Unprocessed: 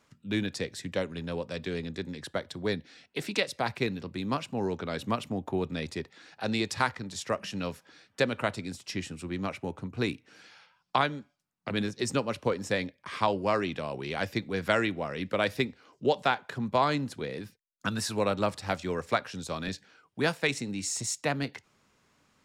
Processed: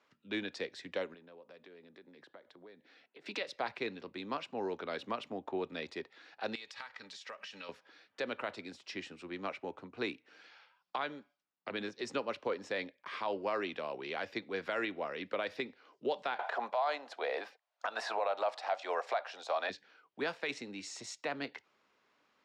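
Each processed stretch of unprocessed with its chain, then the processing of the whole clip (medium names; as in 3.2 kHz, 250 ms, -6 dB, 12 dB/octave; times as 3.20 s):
1.14–3.26 s: high-pass 140 Hz + compression 8:1, threshold -45 dBFS + treble shelf 2.5 kHz -9 dB
6.55–7.69 s: tilt shelf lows -8 dB, about 700 Hz + comb of notches 350 Hz + compression 20:1, threshold -37 dBFS
16.39–19.70 s: resonant high-pass 700 Hz, resonance Q 4.6 + three bands compressed up and down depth 70%
whole clip: three-band isolator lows -20 dB, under 280 Hz, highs -23 dB, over 5.1 kHz; peak limiter -20.5 dBFS; trim -3.5 dB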